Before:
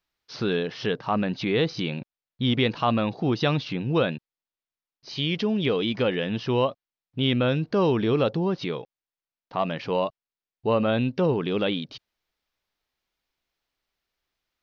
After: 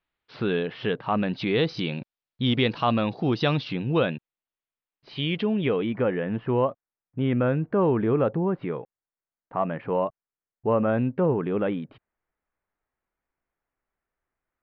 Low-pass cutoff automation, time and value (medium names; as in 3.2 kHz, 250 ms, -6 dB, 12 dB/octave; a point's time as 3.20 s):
low-pass 24 dB/octave
0.97 s 3.3 kHz
1.52 s 5.1 kHz
3.59 s 5.1 kHz
4.13 s 3.3 kHz
5.43 s 3.3 kHz
6.01 s 1.9 kHz